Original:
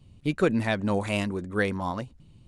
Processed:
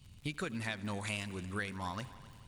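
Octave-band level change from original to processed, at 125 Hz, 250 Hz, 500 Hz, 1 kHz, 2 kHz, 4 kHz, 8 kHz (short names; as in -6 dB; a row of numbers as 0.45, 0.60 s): -10.5, -14.0, -17.0, -10.0, -8.5, -5.5, -2.0 dB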